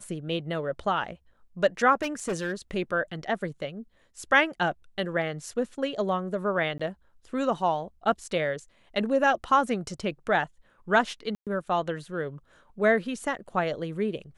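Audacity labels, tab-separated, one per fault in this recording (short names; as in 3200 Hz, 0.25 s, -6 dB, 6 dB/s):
2.020000	2.530000	clipped -25 dBFS
6.780000	6.790000	gap 15 ms
11.350000	11.470000	gap 0.117 s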